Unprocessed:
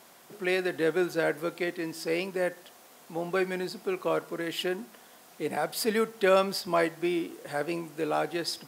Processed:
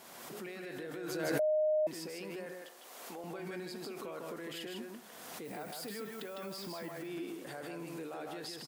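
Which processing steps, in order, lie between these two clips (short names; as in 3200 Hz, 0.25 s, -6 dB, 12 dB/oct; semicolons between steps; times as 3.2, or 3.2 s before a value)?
2.46–3.24 HPF 330 Hz 12 dB/oct; limiter -32 dBFS, peak gain reduction 21.5 dB; 5.44–6.91 added noise violet -55 dBFS; echo 0.154 s -4 dB; 1.39–1.87 bleep 616 Hz -22 dBFS; backwards sustainer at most 30 dB/s; gain -4.5 dB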